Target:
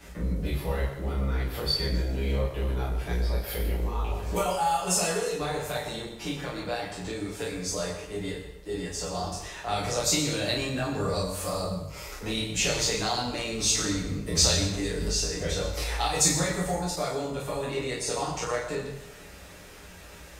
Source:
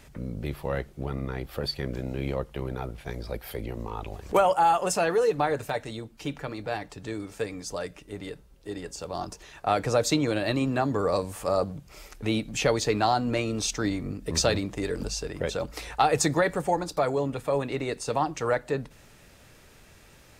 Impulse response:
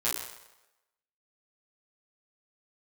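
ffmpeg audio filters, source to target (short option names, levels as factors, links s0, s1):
-filter_complex "[0:a]acrossover=split=140|3000[s0][s1][s2];[s1]acompressor=threshold=0.01:ratio=3[s3];[s0][s3][s2]amix=inputs=3:normalize=0[s4];[1:a]atrim=start_sample=2205[s5];[s4][s5]afir=irnorm=-1:irlink=0"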